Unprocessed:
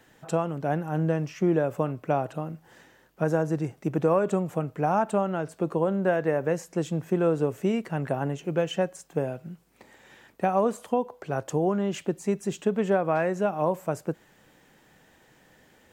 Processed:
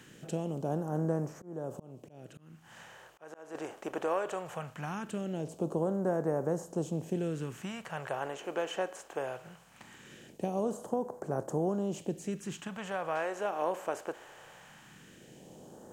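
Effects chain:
compressor on every frequency bin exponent 0.6
all-pass phaser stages 2, 0.2 Hz, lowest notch 140–2,700 Hz
0:01.35–0:03.55: volume swells 453 ms
level −9 dB

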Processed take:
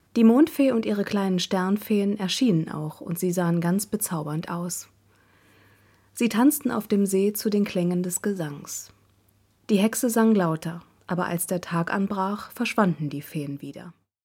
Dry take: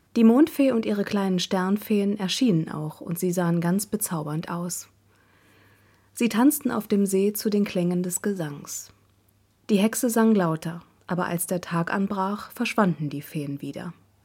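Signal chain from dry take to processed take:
fade-out on the ending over 0.84 s
noise gate with hold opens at −55 dBFS

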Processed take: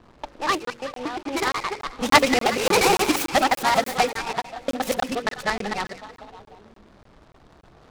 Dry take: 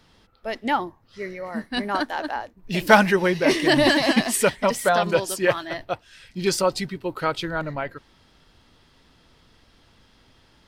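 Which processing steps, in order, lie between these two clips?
reversed piece by piece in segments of 158 ms
surface crackle 450 per second −33 dBFS
wrong playback speed 33 rpm record played at 45 rpm
on a send: echo through a band-pass that steps 187 ms, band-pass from 2,700 Hz, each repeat −0.7 octaves, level −11 dB
on the sum: low-pass that shuts in the quiet parts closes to 950 Hz, open at −16.5 dBFS
in parallel at −1 dB: downward compressor, threshold −34 dBFS, peak gain reduction 23.5 dB
on the sum: hum removal 47.11 Hz, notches 12
regular buffer underruns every 0.29 s, samples 1,024, zero, from 0:00.65
short delay modulated by noise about 2,300 Hz, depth 0.048 ms
level −1 dB

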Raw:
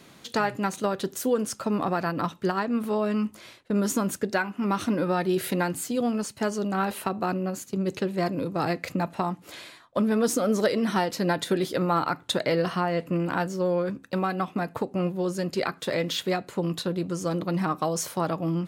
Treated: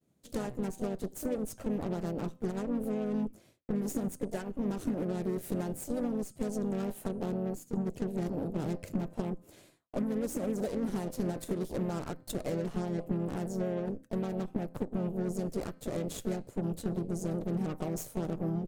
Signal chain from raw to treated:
hum removal 258.4 Hz, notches 38
downward expander −42 dBFS
low-shelf EQ 270 Hz +9.5 dB
harmonic generator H 3 −35 dB, 7 −27 dB, 8 −16 dB, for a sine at −11 dBFS
downward compressor 12 to 1, threshold −22 dBFS, peak gain reduction 8.5 dB
flat-topped bell 2,100 Hz −10 dB 2.9 octaves
pitch-shifted copies added −5 semitones −16 dB, +3 semitones −8 dB
level −7 dB

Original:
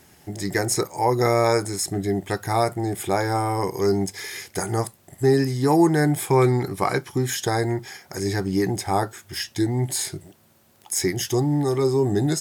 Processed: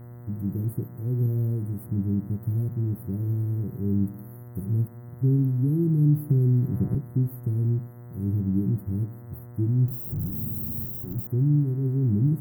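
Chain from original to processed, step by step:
0:09.88–0:11.27: sign of each sample alone
inverse Chebyshev band-stop filter 1,100–5,100 Hz, stop band 80 dB
hum with harmonics 120 Hz, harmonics 17, −46 dBFS −9 dB per octave
on a send at −15.5 dB: convolution reverb RT60 0.70 s, pre-delay 3 ms
0:06.29–0:06.95: on the sum: multiband upward and downward compressor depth 100%
level +3 dB

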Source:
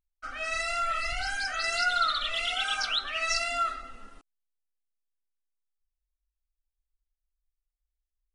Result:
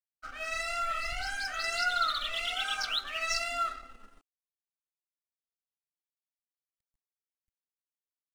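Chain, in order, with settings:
mu-law and A-law mismatch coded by A
level −2 dB

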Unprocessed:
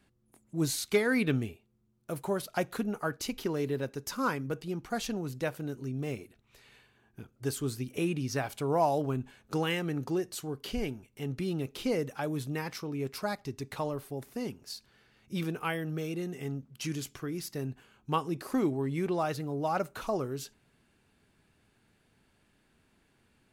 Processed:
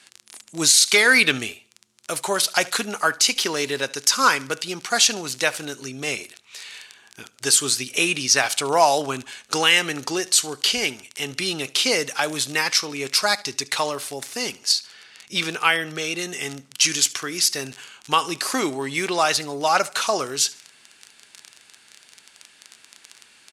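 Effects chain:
0:14.72–0:16.19: high-shelf EQ 7,000 Hz −8 dB
surface crackle 21 per second −43 dBFS
meter weighting curve ITU-R 468
repeating echo 73 ms, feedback 37%, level −22 dB
boost into a limiter +16 dB
level −3 dB

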